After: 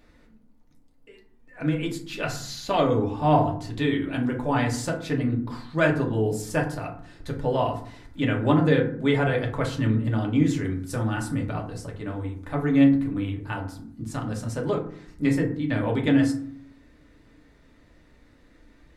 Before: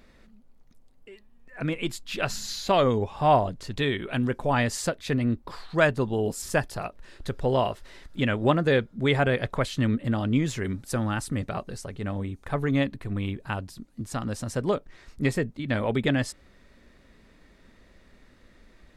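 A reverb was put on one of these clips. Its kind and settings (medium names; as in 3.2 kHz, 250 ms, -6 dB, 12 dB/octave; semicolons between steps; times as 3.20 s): FDN reverb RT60 0.56 s, low-frequency decay 1.6×, high-frequency decay 0.45×, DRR -0.5 dB; trim -4 dB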